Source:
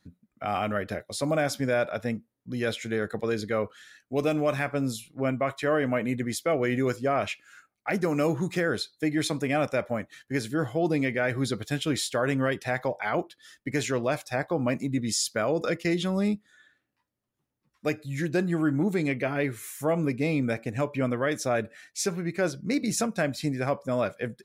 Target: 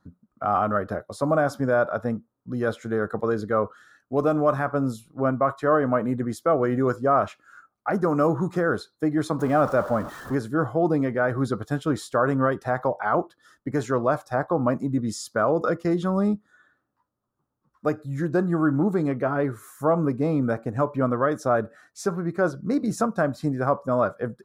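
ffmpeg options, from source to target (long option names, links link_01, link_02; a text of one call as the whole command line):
ffmpeg -i in.wav -filter_complex "[0:a]asettb=1/sr,asplit=3[link_01][link_02][link_03];[link_01]atrim=end=9.394[link_04];[link_02]atrim=start=9.39:end=10.35,asetpts=PTS-STARTPTS,afade=type=in:duration=0.004:curve=qsin,afade=type=out:start_time=0.956:duration=0.004:curve=qsin,aeval=exprs='val(0)+0.5*0.0224*sgn(val(0))':channel_layout=same[link_05];[link_03]atrim=start=10.346[link_06];[link_04][link_05]acrossfade=duration=0.004:curve1=hsin:curve2=qsin[link_07];[link_07][link_06]acrossfade=duration=0.004:curve1=qsin:curve2=hsin,highshelf=frequency=1700:width_type=q:width=3:gain=-10.5,volume=3dB" out.wav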